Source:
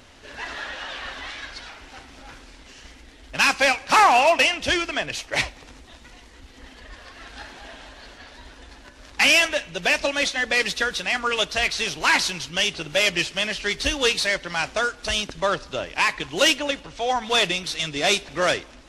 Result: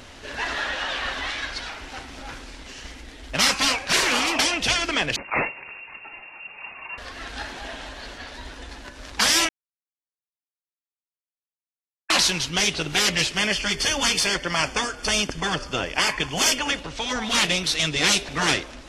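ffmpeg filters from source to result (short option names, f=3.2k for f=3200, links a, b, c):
-filter_complex "[0:a]asettb=1/sr,asplit=3[a][b][c];[a]atrim=end=5.164[d];[b]atrim=start=5.16:end=6.98,asetpts=PTS-STARTPTS,afade=t=in:d=0.004:c=qsin,afade=t=out:st=1.816:d=0.004:c=qsin,lowpass=f=2.4k:t=q:w=0.5098,lowpass=f=2.4k:t=q:w=0.6013,lowpass=f=2.4k:t=q:w=0.9,lowpass=f=2.4k:t=q:w=2.563,afreqshift=-2800[e];[c]atrim=start=6.976[f];[d][e]acrossfade=d=0.004:c1=hsin:c2=qsin[g];[g][f]acrossfade=d=0.004:c1=qsin:c2=hsin,asettb=1/sr,asplit=3[h][i][j];[h]atrim=end=13.374[k];[i]atrim=start=13.37:end=16.78,asetpts=PTS-STARTPTS,afade=t=in:d=0.004:c=qsin,afade=t=out:st=3.406:d=0.004:c=qsin,asuperstop=centerf=3900:order=12:qfactor=6.7[l];[j]atrim=start=16.776[m];[k][l]acrossfade=d=0.004:c1=hsin:c2=qsin[n];[n][m]acrossfade=d=0.004:c1=qsin:c2=hsin,asplit=3[o][p][q];[o]atrim=end=9.49,asetpts=PTS-STARTPTS,afade=t=out:st=9.486:d=0.004:c=hsin[r];[p]atrim=start=9.49:end=12.1,asetpts=PTS-STARTPTS,volume=0[s];[q]atrim=start=12.1,asetpts=PTS-STARTPTS,afade=t=in:d=0.004:c=hsin[t];[r][s][t]concat=n=3:v=0:a=1,afftfilt=real='re*lt(hypot(re,im),0.251)':imag='im*lt(hypot(re,im),0.251)':win_size=1024:overlap=0.75,acontrast=47"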